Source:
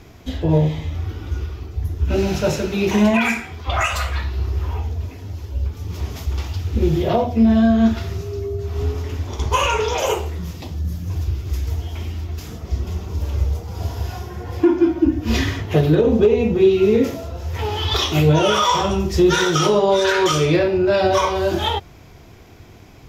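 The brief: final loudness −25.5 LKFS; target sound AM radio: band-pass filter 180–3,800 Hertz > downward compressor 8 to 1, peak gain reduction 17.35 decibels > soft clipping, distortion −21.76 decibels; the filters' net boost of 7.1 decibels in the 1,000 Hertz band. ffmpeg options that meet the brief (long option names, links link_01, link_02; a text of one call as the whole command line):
ffmpeg -i in.wav -af "highpass=180,lowpass=3800,equalizer=frequency=1000:width_type=o:gain=8.5,acompressor=threshold=-24dB:ratio=8,asoftclip=threshold=-18.5dB,volume=5dB" out.wav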